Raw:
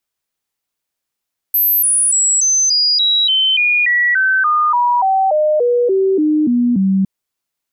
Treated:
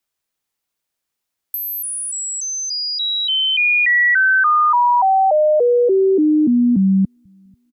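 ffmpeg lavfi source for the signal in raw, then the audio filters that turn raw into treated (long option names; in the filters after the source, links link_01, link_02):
-f lavfi -i "aevalsrc='0.299*clip(min(mod(t,0.29),0.29-mod(t,0.29))/0.005,0,1)*sin(2*PI*12300*pow(2,-floor(t/0.29)/3)*mod(t,0.29))':duration=5.51:sample_rate=44100"
-filter_complex "[0:a]acrossover=split=110|2800[link_01][link_02][link_03];[link_01]aecho=1:1:489|978|1467|1956|2445:0.211|0.0993|0.0467|0.0219|0.0103[link_04];[link_03]acompressor=threshold=-25dB:ratio=6[link_05];[link_04][link_02][link_05]amix=inputs=3:normalize=0"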